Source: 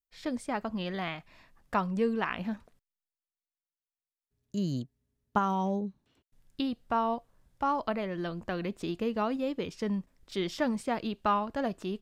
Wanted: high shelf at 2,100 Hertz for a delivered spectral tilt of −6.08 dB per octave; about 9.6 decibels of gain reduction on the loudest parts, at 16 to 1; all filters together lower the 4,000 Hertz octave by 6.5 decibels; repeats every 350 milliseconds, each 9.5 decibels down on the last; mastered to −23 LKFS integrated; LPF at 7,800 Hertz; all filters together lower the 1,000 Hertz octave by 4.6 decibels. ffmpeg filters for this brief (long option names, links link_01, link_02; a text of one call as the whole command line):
ffmpeg -i in.wav -af "lowpass=7800,equalizer=frequency=1000:width_type=o:gain=-4.5,highshelf=frequency=2100:gain=-5,equalizer=frequency=4000:width_type=o:gain=-3.5,acompressor=threshold=-34dB:ratio=16,aecho=1:1:350|700|1050|1400:0.335|0.111|0.0365|0.012,volume=17.5dB" out.wav